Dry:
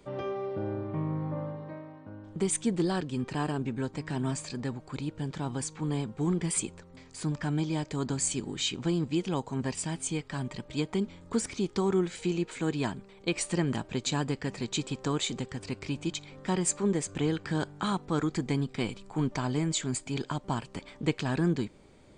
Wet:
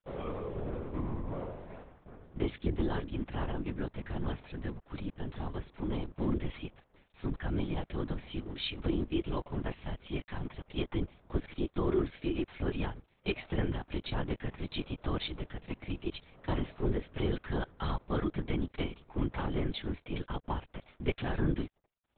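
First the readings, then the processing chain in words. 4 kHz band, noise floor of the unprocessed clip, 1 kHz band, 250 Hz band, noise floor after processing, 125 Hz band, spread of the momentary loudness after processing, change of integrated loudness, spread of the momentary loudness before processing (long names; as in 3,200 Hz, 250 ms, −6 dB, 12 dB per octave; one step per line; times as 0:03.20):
−6.0 dB, −54 dBFS, −5.0 dB, −5.5 dB, −72 dBFS, −4.5 dB, 8 LU, −5.0 dB, 8 LU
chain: dead-zone distortion −50 dBFS
linear-prediction vocoder at 8 kHz whisper
level −2.5 dB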